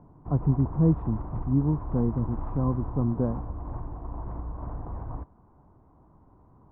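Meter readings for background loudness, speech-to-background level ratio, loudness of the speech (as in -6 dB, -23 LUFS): -37.5 LUFS, 10.0 dB, -27.5 LUFS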